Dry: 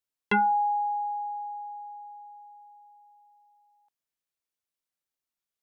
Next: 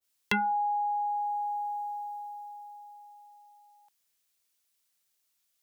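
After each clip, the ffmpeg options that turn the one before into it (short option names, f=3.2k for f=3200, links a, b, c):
-filter_complex "[0:a]highshelf=f=2.1k:g=11.5,acrossover=split=160[a][b];[b]acompressor=threshold=-35dB:ratio=3[c];[a][c]amix=inputs=2:normalize=0,adynamicequalizer=threshold=0.00447:dfrequency=1600:dqfactor=0.7:tfrequency=1600:tqfactor=0.7:attack=5:release=100:ratio=0.375:range=2.5:mode=boostabove:tftype=highshelf,volume=4dB"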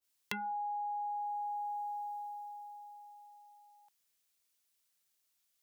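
-af "acompressor=threshold=-34dB:ratio=5,volume=-2.5dB"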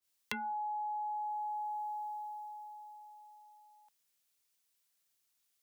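-af "afreqshift=17"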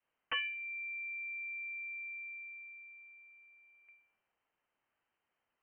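-af "bandreject=f=70.3:t=h:w=4,bandreject=f=140.6:t=h:w=4,bandreject=f=210.9:t=h:w=4,bandreject=f=281.2:t=h:w=4,bandreject=f=351.5:t=h:w=4,bandreject=f=421.8:t=h:w=4,bandreject=f=492.1:t=h:w=4,bandreject=f=562.4:t=h:w=4,bandreject=f=632.7:t=h:w=4,bandreject=f=703:t=h:w=4,bandreject=f=773.3:t=h:w=4,bandreject=f=843.6:t=h:w=4,bandreject=f=913.9:t=h:w=4,bandreject=f=984.2:t=h:w=4,bandreject=f=1.0545k:t=h:w=4,bandreject=f=1.1248k:t=h:w=4,bandreject=f=1.1951k:t=h:w=4,bandreject=f=1.2654k:t=h:w=4,bandreject=f=1.3357k:t=h:w=4,bandreject=f=1.406k:t=h:w=4,bandreject=f=1.4763k:t=h:w=4,bandreject=f=1.5466k:t=h:w=4,bandreject=f=1.6169k:t=h:w=4,aeval=exprs='(mod(33.5*val(0)+1,2)-1)/33.5':c=same,lowpass=f=2.7k:t=q:w=0.5098,lowpass=f=2.7k:t=q:w=0.6013,lowpass=f=2.7k:t=q:w=0.9,lowpass=f=2.7k:t=q:w=2.563,afreqshift=-3200,volume=6.5dB"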